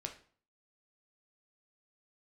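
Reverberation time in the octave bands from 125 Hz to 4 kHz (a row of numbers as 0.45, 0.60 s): 0.55, 0.55, 0.45, 0.45, 0.40, 0.40 s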